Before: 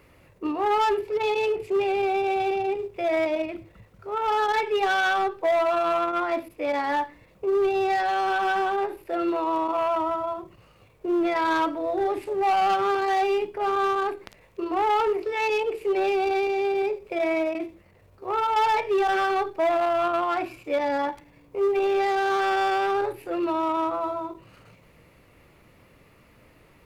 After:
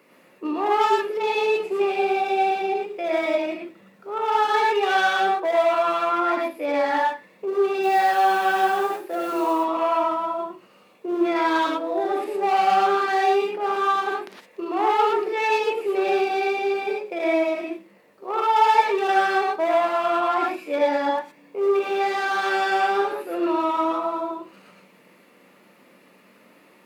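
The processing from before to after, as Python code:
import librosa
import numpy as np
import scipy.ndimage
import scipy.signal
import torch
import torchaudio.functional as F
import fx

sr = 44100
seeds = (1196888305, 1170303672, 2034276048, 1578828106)

y = scipy.signal.sosfilt(scipy.signal.cheby1(4, 1.0, 180.0, 'highpass', fs=sr, output='sos'), x)
y = fx.mod_noise(y, sr, seeds[0], snr_db=26, at=(7.82, 9.52), fade=0.02)
y = fx.rev_gated(y, sr, seeds[1], gate_ms=140, shape='rising', drr_db=-2.0)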